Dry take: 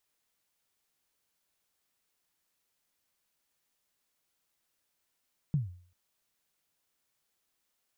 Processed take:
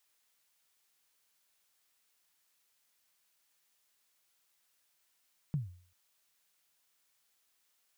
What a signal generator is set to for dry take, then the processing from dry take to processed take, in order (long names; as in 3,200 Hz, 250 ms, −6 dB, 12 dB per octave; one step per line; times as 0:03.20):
synth kick length 0.39 s, from 160 Hz, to 89 Hz, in 147 ms, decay 0.49 s, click off, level −22 dB
tilt shelving filter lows −5 dB, about 650 Hz